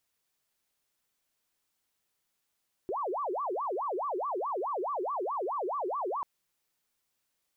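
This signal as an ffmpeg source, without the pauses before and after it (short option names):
-f lavfi -i "aevalsrc='0.0316*sin(2*PI*(761.5*t-408.5/(2*PI*4.7)*sin(2*PI*4.7*t)))':d=3.34:s=44100"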